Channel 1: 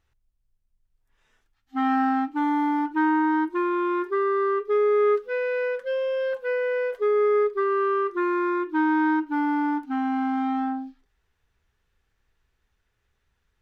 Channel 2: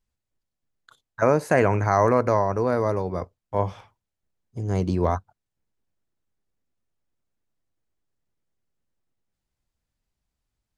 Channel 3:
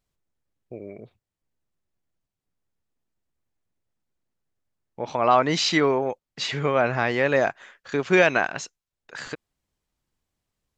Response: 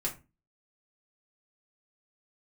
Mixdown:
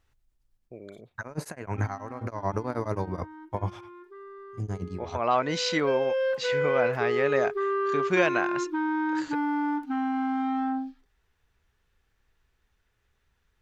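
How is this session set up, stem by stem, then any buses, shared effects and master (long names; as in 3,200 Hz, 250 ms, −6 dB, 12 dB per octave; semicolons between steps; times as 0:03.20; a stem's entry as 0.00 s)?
+1.0 dB, 0.00 s, no send, brickwall limiter −23 dBFS, peak gain reduction 9 dB; automatic ducking −18 dB, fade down 0.30 s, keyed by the second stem
0:04.53 −2 dB → 0:04.93 −9.5 dB, 0.00 s, no send, compressor whose output falls as the input rises −24 dBFS, ratio −0.5; parametric band 510 Hz −5.5 dB; tremolo along a rectified sine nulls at 9.3 Hz
−6.0 dB, 0.00 s, no send, no processing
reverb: not used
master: no processing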